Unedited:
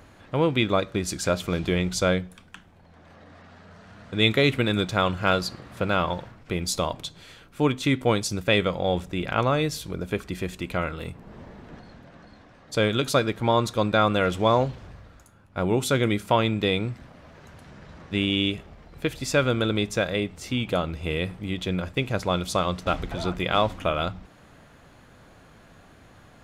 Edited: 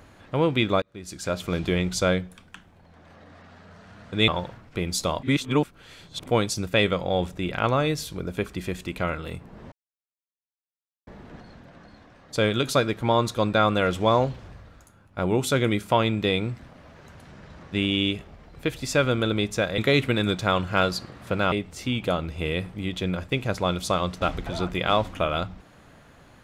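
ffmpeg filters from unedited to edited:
-filter_complex "[0:a]asplit=8[a][b][c][d][e][f][g][h];[a]atrim=end=0.82,asetpts=PTS-STARTPTS,afade=t=out:st=0.816:d=0.004:c=hsin[i];[b]atrim=start=0.82:end=4.282,asetpts=PTS-STARTPTS,afade=t=in:d=0.75[j];[c]atrim=start=6.018:end=6.972[k];[d]atrim=start=6.968:end=8.002,asetpts=PTS-STARTPTS,areverse[l];[e]atrim=start=7.998:end=11.46,asetpts=PTS-STARTPTS,afade=t=out:st=3.458:d=0.004:c=hsin,apad=pad_dur=1.35[m];[f]atrim=start=11.46:end=20.172,asetpts=PTS-STARTPTS,afade=t=in:d=0.004:c=hsin[n];[g]atrim=start=4.278:end=6.022[o];[h]atrim=start=20.168[p];[i][j]concat=n=2:v=0:a=1[q];[q][k]acrossfade=d=0.004:c1=hsin:c2=hsin[r];[r][l]acrossfade=d=0.004:c1=hsin:c2=hsin[s];[m][n]concat=n=2:v=0:a=1[t];[s][t]acrossfade=d=0.004:c1=hsin:c2=hsin[u];[u][o]acrossfade=d=0.004:c1=hsin:c2=hsin[v];[v][p]acrossfade=d=0.004:c1=hsin:c2=hsin"

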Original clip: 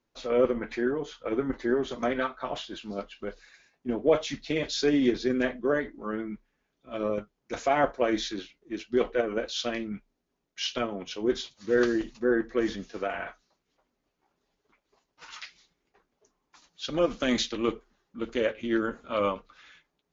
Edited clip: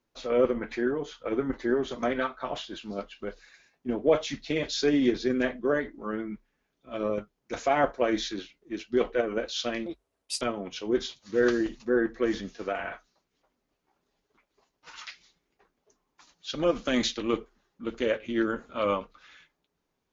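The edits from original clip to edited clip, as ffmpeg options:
-filter_complex "[0:a]asplit=3[a][b][c];[a]atrim=end=9.864[d];[b]atrim=start=9.86:end=10.76,asetpts=PTS-STARTPTS,asetrate=71883,aresample=44100[e];[c]atrim=start=10.756[f];[d][e]acrossfade=d=0.004:c1=hsin:c2=hsin[g];[g][f]acrossfade=d=0.004:c1=hsin:c2=hsin"

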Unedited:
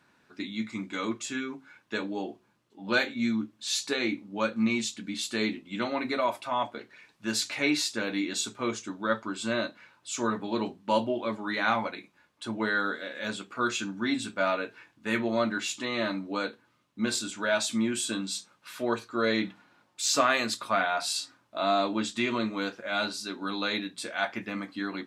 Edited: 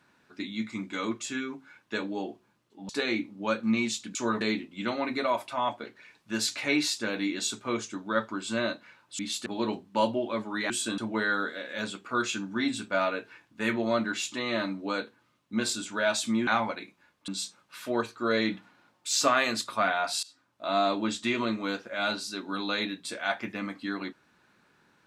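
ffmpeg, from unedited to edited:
-filter_complex "[0:a]asplit=11[a][b][c][d][e][f][g][h][i][j][k];[a]atrim=end=2.892[l];[b]atrim=start=3.818:end=5.082[m];[c]atrim=start=10.128:end=10.392[n];[d]atrim=start=5.348:end=10.132[o];[e]atrim=start=5.078:end=5.352[p];[f]atrim=start=10.388:end=11.632[q];[g]atrim=start=17.928:end=18.212[r];[h]atrim=start=12.438:end=17.932[s];[i]atrim=start=11.628:end=12.442[t];[j]atrim=start=18.208:end=21.16,asetpts=PTS-STARTPTS,afade=t=out:st=2.948:d=0.004:c=hsin:silence=0.0668344[u];[k]atrim=start=21.16,asetpts=PTS-STARTPTS,afade=t=in:d=0.55:silence=0.0668344[v];[l][m]acrossfade=d=0.004:c1=hsin:c2=hsin[w];[w][n]acrossfade=d=0.004:c1=hsin:c2=hsin[x];[x][o]acrossfade=d=0.004:c1=hsin:c2=hsin[y];[y][p]acrossfade=d=0.004:c1=hsin:c2=hsin[z];[z][q]acrossfade=d=0.004:c1=hsin:c2=hsin[aa];[aa][r]acrossfade=d=0.004:c1=hsin:c2=hsin[ab];[ab][s]acrossfade=d=0.004:c1=hsin:c2=hsin[ac];[ac][t]acrossfade=d=0.004:c1=hsin:c2=hsin[ad];[u][v]concat=n=2:v=0:a=1[ae];[ad][ae]acrossfade=d=0.004:c1=hsin:c2=hsin"

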